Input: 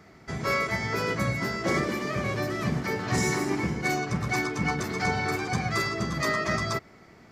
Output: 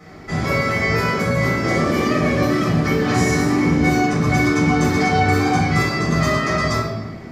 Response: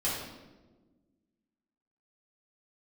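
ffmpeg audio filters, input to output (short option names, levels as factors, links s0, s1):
-filter_complex "[0:a]alimiter=limit=0.0794:level=0:latency=1:release=130[s0];[1:a]atrim=start_sample=2205[s1];[s0][s1]afir=irnorm=-1:irlink=0,volume=1.78"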